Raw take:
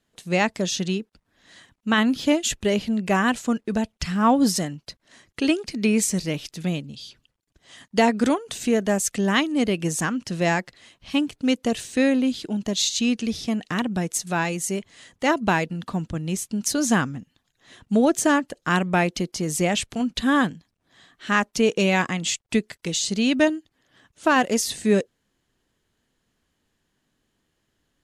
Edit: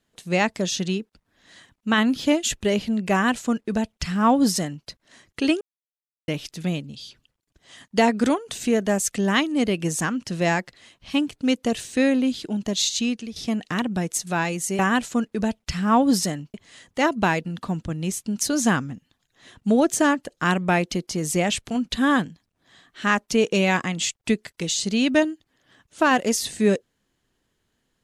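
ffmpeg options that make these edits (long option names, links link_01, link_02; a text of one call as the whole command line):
ffmpeg -i in.wav -filter_complex "[0:a]asplit=6[link_01][link_02][link_03][link_04][link_05][link_06];[link_01]atrim=end=5.61,asetpts=PTS-STARTPTS,afade=type=out:start_time=5.606:duration=0.004:curve=hsin[link_07];[link_02]atrim=start=5.61:end=6.28,asetpts=PTS-STARTPTS,volume=0[link_08];[link_03]atrim=start=6.28:end=13.36,asetpts=PTS-STARTPTS,afade=type=in:duration=0.004:curve=hsin,afade=type=out:start_time=6.67:duration=0.41:silence=0.211349[link_09];[link_04]atrim=start=13.36:end=14.792,asetpts=PTS-STARTPTS,afade=type=in:duration=0.004:curve=hsin:silence=0.211349[link_10];[link_05]atrim=start=3.118:end=4.872[link_11];[link_06]atrim=start=14.788[link_12];[link_07][link_08][link_09][link_10]concat=n=4:v=0:a=1[link_13];[link_13][link_11]acrossfade=duration=0.004:curve1=hsin:curve2=hsin[link_14];[link_14][link_12]acrossfade=duration=0.004:curve1=hsin:curve2=hsin" out.wav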